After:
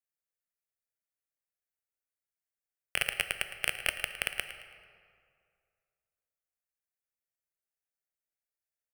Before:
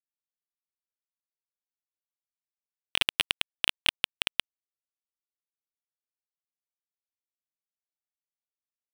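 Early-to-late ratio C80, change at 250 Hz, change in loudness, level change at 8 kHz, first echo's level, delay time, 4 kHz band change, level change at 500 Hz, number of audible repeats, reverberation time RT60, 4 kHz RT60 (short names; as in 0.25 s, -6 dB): 9.0 dB, -8.0 dB, -4.5 dB, +0.5 dB, -13.5 dB, 0.11 s, -9.0 dB, +1.5 dB, 2, 2.2 s, 1.3 s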